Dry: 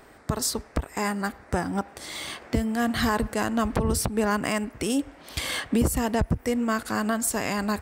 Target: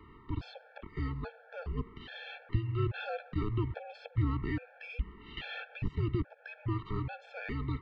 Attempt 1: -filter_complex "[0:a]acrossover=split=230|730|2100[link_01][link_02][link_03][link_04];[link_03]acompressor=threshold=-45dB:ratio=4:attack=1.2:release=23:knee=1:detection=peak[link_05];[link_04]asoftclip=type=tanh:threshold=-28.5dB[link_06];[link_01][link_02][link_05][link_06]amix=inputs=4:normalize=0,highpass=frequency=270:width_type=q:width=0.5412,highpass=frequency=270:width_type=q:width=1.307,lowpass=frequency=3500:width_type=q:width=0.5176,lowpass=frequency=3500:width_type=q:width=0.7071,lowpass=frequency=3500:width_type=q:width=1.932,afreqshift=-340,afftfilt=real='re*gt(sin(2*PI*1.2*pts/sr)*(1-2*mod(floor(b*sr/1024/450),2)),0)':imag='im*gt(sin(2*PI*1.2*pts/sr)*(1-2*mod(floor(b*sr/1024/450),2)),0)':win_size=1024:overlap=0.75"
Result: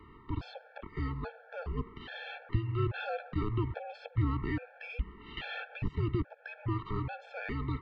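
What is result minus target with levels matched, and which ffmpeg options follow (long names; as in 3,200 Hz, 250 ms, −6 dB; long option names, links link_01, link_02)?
downward compressor: peak gain reduction −8.5 dB
-filter_complex "[0:a]acrossover=split=230|730|2100[link_01][link_02][link_03][link_04];[link_03]acompressor=threshold=-56.5dB:ratio=4:attack=1.2:release=23:knee=1:detection=peak[link_05];[link_04]asoftclip=type=tanh:threshold=-28.5dB[link_06];[link_01][link_02][link_05][link_06]amix=inputs=4:normalize=0,highpass=frequency=270:width_type=q:width=0.5412,highpass=frequency=270:width_type=q:width=1.307,lowpass=frequency=3500:width_type=q:width=0.5176,lowpass=frequency=3500:width_type=q:width=0.7071,lowpass=frequency=3500:width_type=q:width=1.932,afreqshift=-340,afftfilt=real='re*gt(sin(2*PI*1.2*pts/sr)*(1-2*mod(floor(b*sr/1024/450),2)),0)':imag='im*gt(sin(2*PI*1.2*pts/sr)*(1-2*mod(floor(b*sr/1024/450),2)),0)':win_size=1024:overlap=0.75"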